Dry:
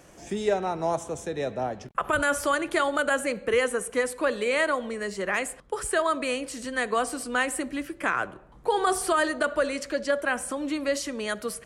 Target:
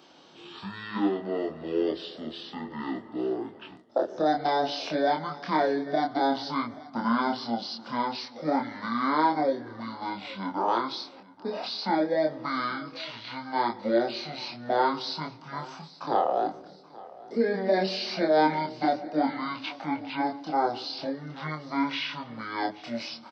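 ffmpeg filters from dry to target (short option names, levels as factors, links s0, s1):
-filter_complex "[0:a]highpass=670,asetrate=22050,aresample=44100,asplit=2[s0][s1];[s1]adelay=26,volume=0.708[s2];[s0][s2]amix=inputs=2:normalize=0,asplit=2[s3][s4];[s4]aecho=0:1:830|1660|2490:0.0944|0.0321|0.0109[s5];[s3][s5]amix=inputs=2:normalize=0,acrossover=split=4900[s6][s7];[s7]acompressor=threshold=0.00126:ratio=4:attack=1:release=60[s8];[s6][s8]amix=inputs=2:normalize=0"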